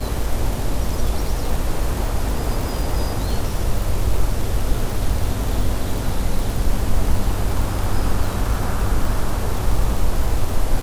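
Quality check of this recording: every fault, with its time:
surface crackle 60 per second −23 dBFS

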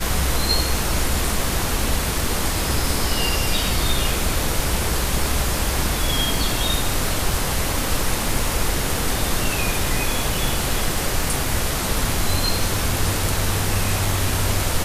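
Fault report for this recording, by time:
surface crackle 16 per second −28 dBFS

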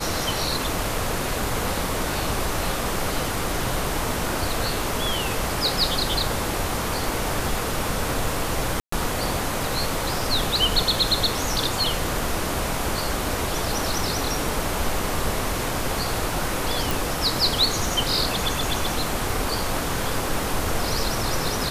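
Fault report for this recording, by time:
0:08.80–0:08.92: drop-out 124 ms
0:16.91: click

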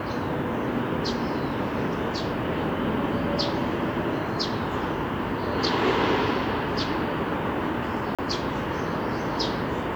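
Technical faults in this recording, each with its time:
0:08.15–0:08.19: drop-out 36 ms

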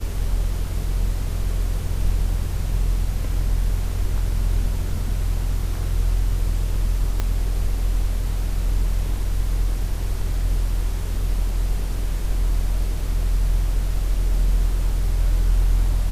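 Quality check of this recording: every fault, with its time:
0:07.20: click −10 dBFS

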